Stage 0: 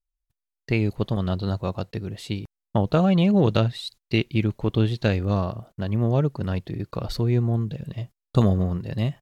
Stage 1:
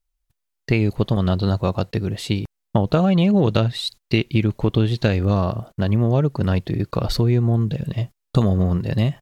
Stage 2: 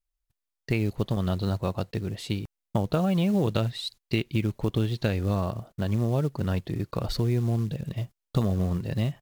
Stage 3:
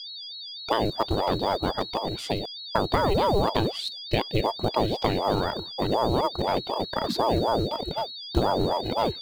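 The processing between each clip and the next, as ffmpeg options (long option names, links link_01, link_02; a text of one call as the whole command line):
ffmpeg -i in.wav -af "acompressor=threshold=-23dB:ratio=3,volume=8dB" out.wav
ffmpeg -i in.wav -af "acrusher=bits=7:mode=log:mix=0:aa=0.000001,volume=-7.5dB" out.wav
ffmpeg -i in.wav -af "aeval=exprs='val(0)+0.0141*sin(2*PI*4100*n/s)':channel_layout=same,aeval=exprs='val(0)*sin(2*PI*500*n/s+500*0.6/4*sin(2*PI*4*n/s))':channel_layout=same,volume=4dB" out.wav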